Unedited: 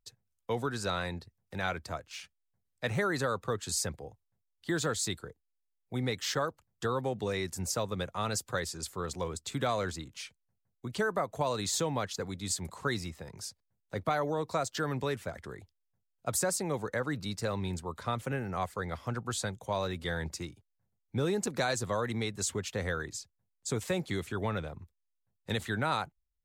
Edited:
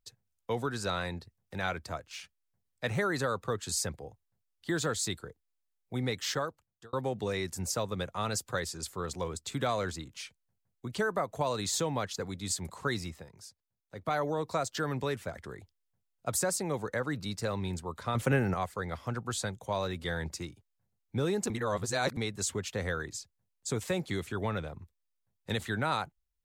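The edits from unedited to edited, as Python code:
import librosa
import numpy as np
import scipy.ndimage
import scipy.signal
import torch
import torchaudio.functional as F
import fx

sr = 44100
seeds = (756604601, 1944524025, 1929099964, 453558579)

y = fx.edit(x, sr, fx.fade_out_span(start_s=6.3, length_s=0.63),
    fx.fade_down_up(start_s=13.16, length_s=0.98, db=-8.5, fade_s=0.13),
    fx.clip_gain(start_s=18.15, length_s=0.39, db=7.5),
    fx.reverse_span(start_s=21.5, length_s=0.67), tone=tone)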